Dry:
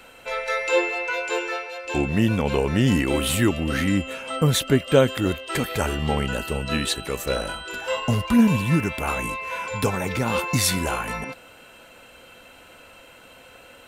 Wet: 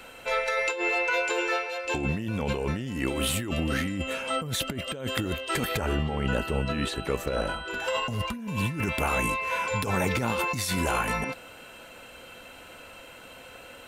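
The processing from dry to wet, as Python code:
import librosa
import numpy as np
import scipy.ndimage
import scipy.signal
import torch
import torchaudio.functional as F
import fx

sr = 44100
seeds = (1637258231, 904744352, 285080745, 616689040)

y = fx.over_compress(x, sr, threshold_db=-26.0, ratio=-1.0)
y = fx.high_shelf(y, sr, hz=3700.0, db=-11.5, at=(5.77, 7.8))
y = y * librosa.db_to_amplitude(-2.0)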